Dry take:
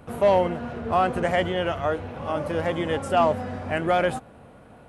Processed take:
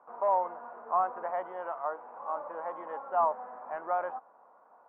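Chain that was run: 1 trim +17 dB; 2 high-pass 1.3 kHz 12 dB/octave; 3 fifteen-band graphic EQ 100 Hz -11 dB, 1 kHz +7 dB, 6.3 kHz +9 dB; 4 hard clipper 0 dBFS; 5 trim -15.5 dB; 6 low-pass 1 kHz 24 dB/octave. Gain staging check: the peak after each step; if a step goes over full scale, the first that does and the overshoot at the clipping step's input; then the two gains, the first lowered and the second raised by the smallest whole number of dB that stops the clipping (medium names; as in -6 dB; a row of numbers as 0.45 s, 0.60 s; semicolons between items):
+5.5 dBFS, +0.5 dBFS, +4.0 dBFS, 0.0 dBFS, -15.5 dBFS, -16.5 dBFS; step 1, 4.0 dB; step 1 +13 dB, step 5 -11.5 dB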